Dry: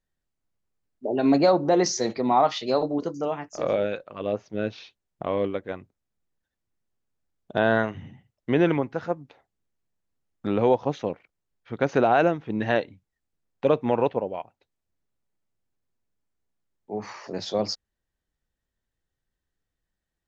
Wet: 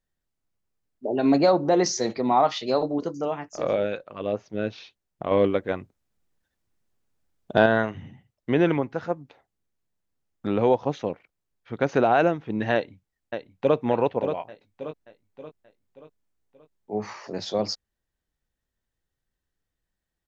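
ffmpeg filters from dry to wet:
ffmpeg -i in.wav -filter_complex "[0:a]asettb=1/sr,asplit=3[link_01][link_02][link_03];[link_01]atrim=end=5.314[link_04];[link_02]atrim=start=5.31:end=7.66,asetpts=PTS-STARTPTS,afade=type=in:duration=0.004:curve=qsin,afade=type=out:start_time=2.346:duration=0.004:curve=qsin,acontrast=44[link_05];[link_03]atrim=start=7.656[link_06];[link_04][link_05]acrossfade=duration=0.004:curve1=hsin:curve2=qsin[link_07];[link_07][link_06]acrossfade=duration=0.004:curve1=qsin:curve2=hsin,asplit=2[link_08][link_09];[link_09]afade=type=in:start_time=12.74:duration=0.01,afade=type=out:start_time=13.75:duration=0.01,aecho=0:1:580|1160|1740|2320|2900:0.421697|0.189763|0.0853935|0.0384271|0.0172922[link_10];[link_08][link_10]amix=inputs=2:normalize=0,asettb=1/sr,asplit=3[link_11][link_12][link_13];[link_11]atrim=end=14.354[link_14];[link_12]atrim=start=14.35:end=17.14,asetpts=PTS-STARTPTS,afade=type=in:duration=0.004:curve=qsin,afade=type=out:start_time=2.786:duration=0.004:curve=qsin,asplit=2[link_15][link_16];[link_16]adelay=19,volume=-6dB[link_17];[link_15][link_17]amix=inputs=2:normalize=0,atrim=end_sample=123039[link_18];[link_13]atrim=start=17.136[link_19];[link_14][link_18]acrossfade=duration=0.004:curve1=hsin:curve2=qsin[link_20];[link_20][link_19]acrossfade=duration=0.004:curve1=qsin:curve2=hsin" out.wav

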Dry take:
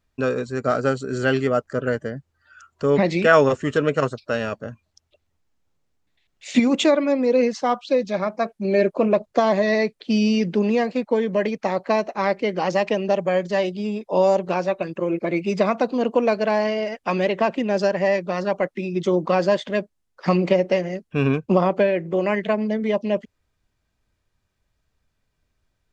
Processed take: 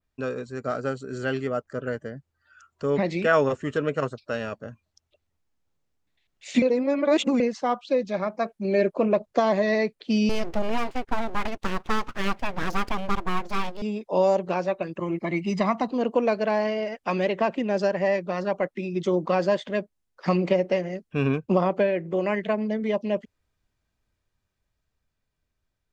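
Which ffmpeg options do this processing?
ffmpeg -i in.wav -filter_complex "[0:a]asettb=1/sr,asplit=3[link_01][link_02][link_03];[link_01]atrim=end=10.294[link_04];[link_02]atrim=start=10.29:end=13.82,asetpts=PTS-STARTPTS,afade=type=in:duration=0.004:curve=qsin,afade=type=out:start_time=3.526:duration=0.004:curve=qsin,aeval=exprs='abs(val(0))':channel_layout=same[link_05];[link_03]atrim=start=13.816[link_06];[link_04][link_05]acrossfade=duration=0.004:curve1=hsin:curve2=qsin[link_07];[link_07][link_06]acrossfade=duration=0.004:curve1=qsin:curve2=hsin,asettb=1/sr,asplit=3[link_08][link_09][link_10];[link_08]atrim=end=14.994[link_11];[link_09]atrim=start=14.99:end=15.91,asetpts=PTS-STARTPTS,afade=type=in:duration=0.004:curve=qsin,afade=type=out:start_time=0.916:duration=0.004:curve=qsin,aecho=1:1:1:0.65,atrim=end_sample=40572[link_12];[link_10]atrim=start=15.906[link_13];[link_11][link_12]acrossfade=duration=0.004:curve1=hsin:curve2=qsin[link_14];[link_14][link_13]acrossfade=duration=0.004:curve1=qsin:curve2=hsin,asplit=3[link_15][link_16][link_17];[link_15]atrim=end=6.622[link_18];[link_16]atrim=start=6.618:end=7.402,asetpts=PTS-STARTPTS,areverse[link_19];[link_17]atrim=start=7.398[link_20];[link_18][link_19]acrossfade=duration=0.004:curve1=hsin:curve2=hsin[link_21];[link_21][link_20]acrossfade=duration=0.004:curve1=hsin:curve2=hsin,adynamicequalizer=threshold=0.00891:dfrequency=5600:dqfactor=0.72:tfrequency=5600:tqfactor=0.72:attack=5:release=100:ratio=0.375:range=2:mode=cutabove:tftype=bell,dynaudnorm=framelen=410:gausssize=11:maxgain=7dB,volume=-7.5dB" out.wav

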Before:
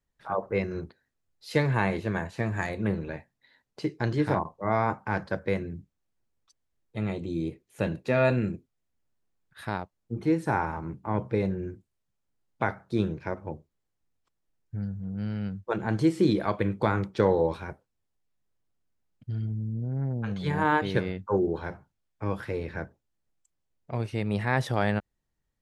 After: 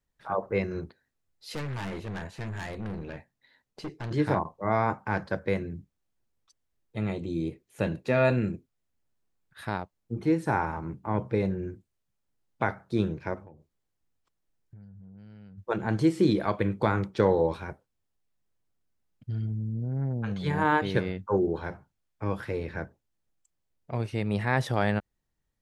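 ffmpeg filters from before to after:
ffmpeg -i in.wav -filter_complex "[0:a]asettb=1/sr,asplit=3[link_01][link_02][link_03];[link_01]atrim=end=1.544[link_04];[link_02]atrim=start=1.54:end=4.11,asetpts=PTS-STARTPTS,afade=type=in:duration=0.004:curve=qsin,afade=type=out:start_time=2.566:duration=0.004:curve=qsin,aeval=exprs='(tanh(39.8*val(0)+0.35)-tanh(0.35))/39.8':channel_layout=same[link_05];[link_03]atrim=start=4.106[link_06];[link_04][link_05]acrossfade=duration=0.004:curve1=hsin:curve2=qsin[link_07];[link_07][link_06]acrossfade=duration=0.004:curve1=qsin:curve2=hsin,asplit=3[link_08][link_09][link_10];[link_08]afade=type=out:start_time=13.42:duration=0.02[link_11];[link_09]acompressor=threshold=-46dB:ratio=8:attack=3.2:release=140:knee=1:detection=peak,afade=type=in:start_time=13.42:duration=0.02,afade=type=out:start_time=15.57:duration=0.02[link_12];[link_10]afade=type=in:start_time=15.57:duration=0.02[link_13];[link_11][link_12][link_13]amix=inputs=3:normalize=0" out.wav

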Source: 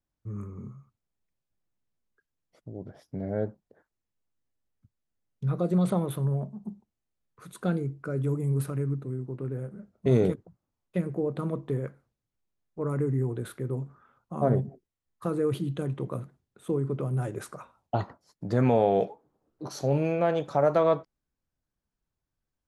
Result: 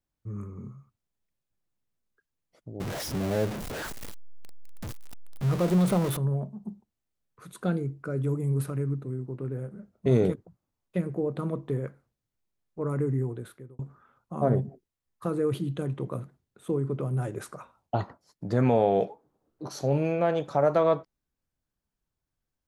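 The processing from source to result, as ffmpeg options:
ffmpeg -i in.wav -filter_complex "[0:a]asettb=1/sr,asplit=3[link_01][link_02][link_03];[link_01]atrim=end=2.804[link_04];[link_02]atrim=start=2.8:end=6.17,asetpts=PTS-STARTPTS,afade=type=in:duration=0.004:curve=qsin,afade=type=out:start_time=3.366:duration=0.004:curve=qsin,aeval=exprs='val(0)+0.5*0.0355*sgn(val(0))':channel_layout=same[link_05];[link_03]atrim=start=6.166[link_06];[link_04][link_05]acrossfade=duration=0.004:curve1=hsin:curve2=qsin[link_07];[link_07][link_06]acrossfade=duration=0.004:curve1=qsin:curve2=hsin,asplit=2[link_08][link_09];[link_08]atrim=end=13.79,asetpts=PTS-STARTPTS,afade=type=out:start_time=13.14:duration=0.65[link_10];[link_09]atrim=start=13.79,asetpts=PTS-STARTPTS,afade=type=in:duration=0.004:curve=hsin[link_11];[link_10][link_11]concat=n=2:v=0:a=1" out.wav

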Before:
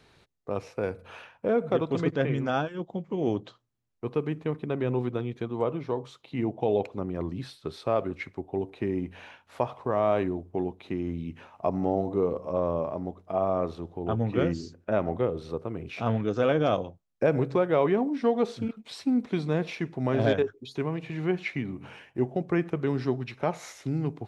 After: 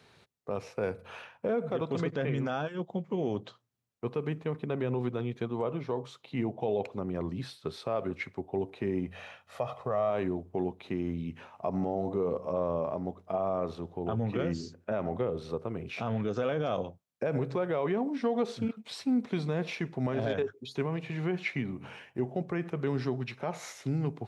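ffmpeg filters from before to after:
ffmpeg -i in.wav -filter_complex "[0:a]asettb=1/sr,asplit=3[link_01][link_02][link_03];[link_01]atrim=end=9.074[link_04];[link_02]atrim=start=9.07:end=10.1,asetpts=PTS-STARTPTS,afade=type=in:duration=0.004:curve=qsin,afade=type=out:start_time=1.026:duration=0.004:curve=qsin,aecho=1:1:1.6:0.56,atrim=end_sample=45423[link_05];[link_03]atrim=start=10.096[link_06];[link_04][link_05]acrossfade=duration=0.004:curve1=hsin:curve2=qsin[link_07];[link_07][link_06]acrossfade=duration=0.004:curve1=qsin:curve2=hsin,alimiter=limit=-20.5dB:level=0:latency=1:release=58,highpass=89,equalizer=frequency=310:width_type=o:width=0.25:gain=-6" out.wav

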